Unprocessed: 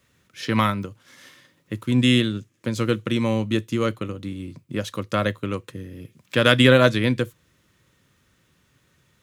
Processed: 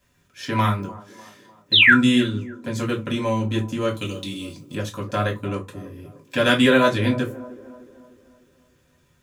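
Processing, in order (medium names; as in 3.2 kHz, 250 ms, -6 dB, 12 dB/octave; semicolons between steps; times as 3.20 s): 1.72–1.94 s: painted sound fall 1.3–4.2 kHz -11 dBFS; 3.94–4.75 s: resonant high shelf 2.2 kHz +13 dB, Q 1.5; feedback echo behind a band-pass 300 ms, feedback 48%, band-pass 510 Hz, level -15 dB; reverberation RT60 0.20 s, pre-delay 3 ms, DRR -1 dB; trim -6 dB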